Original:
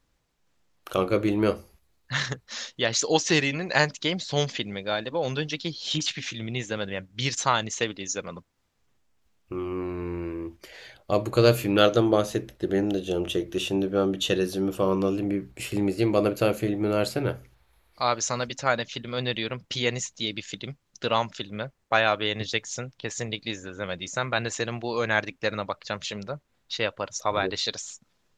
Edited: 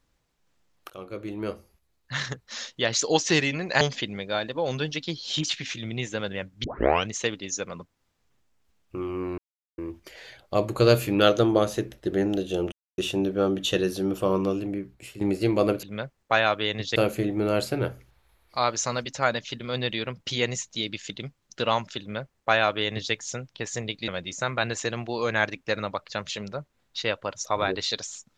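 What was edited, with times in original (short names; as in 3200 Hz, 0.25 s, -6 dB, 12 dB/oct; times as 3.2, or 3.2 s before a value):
0.9–2.72 fade in, from -19.5 dB
3.81–4.38 cut
7.21 tape start 0.44 s
9.95–10.35 mute
13.29–13.55 mute
14.92–15.78 fade out, to -13 dB
21.44–22.57 copy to 16.4
23.52–23.83 cut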